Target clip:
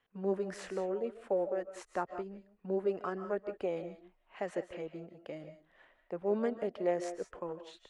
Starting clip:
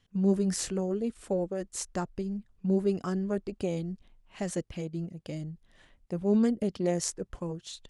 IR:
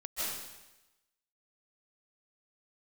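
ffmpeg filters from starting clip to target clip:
-filter_complex "[0:a]acrossover=split=380 2500:gain=0.1 1 0.0794[a][b][c];[a][b][c]amix=inputs=3:normalize=0,asplit=2[d][e];[1:a]atrim=start_sample=2205,afade=t=out:st=0.24:d=0.01,atrim=end_sample=11025[f];[e][f]afir=irnorm=-1:irlink=0,volume=-9.5dB[g];[d][g]amix=inputs=2:normalize=0"

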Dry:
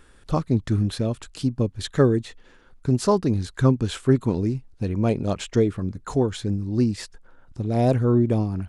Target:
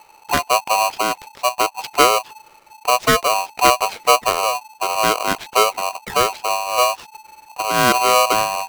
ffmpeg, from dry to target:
-af "adynamicsmooth=sensitivity=3:basefreq=1.9k,aeval=exprs='val(0)*sgn(sin(2*PI*870*n/s))':c=same,volume=4dB"

